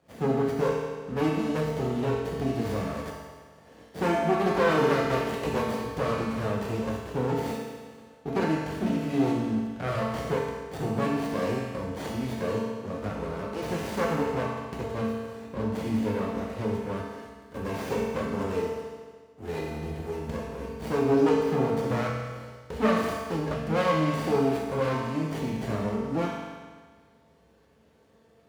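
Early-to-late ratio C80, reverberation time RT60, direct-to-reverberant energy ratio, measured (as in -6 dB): 2.0 dB, 1.6 s, -4.5 dB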